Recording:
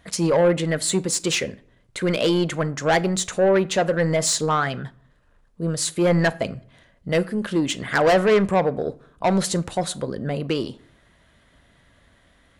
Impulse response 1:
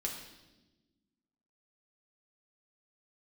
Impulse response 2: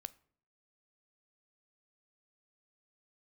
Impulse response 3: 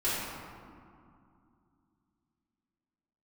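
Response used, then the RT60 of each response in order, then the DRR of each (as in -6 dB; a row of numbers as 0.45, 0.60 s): 2; 1.1, 0.60, 2.4 s; -0.5, 15.5, -12.5 dB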